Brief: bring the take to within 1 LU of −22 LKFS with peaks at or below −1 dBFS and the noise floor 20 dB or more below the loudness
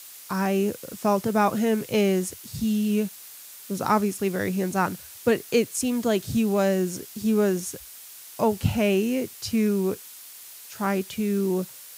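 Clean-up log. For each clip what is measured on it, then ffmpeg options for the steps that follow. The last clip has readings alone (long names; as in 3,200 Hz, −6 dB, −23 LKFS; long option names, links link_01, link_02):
background noise floor −44 dBFS; target noise floor −45 dBFS; integrated loudness −25.0 LKFS; sample peak −9.0 dBFS; target loudness −22.0 LKFS
→ -af "afftdn=noise_reduction=6:noise_floor=-44"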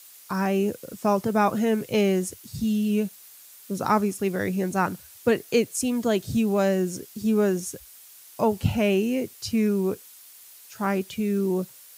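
background noise floor −49 dBFS; integrated loudness −25.0 LKFS; sample peak −9.0 dBFS; target loudness −22.0 LKFS
→ -af "volume=3dB"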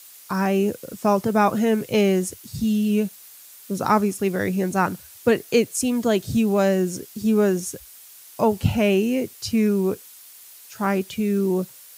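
integrated loudness −22.0 LKFS; sample peak −6.0 dBFS; background noise floor −46 dBFS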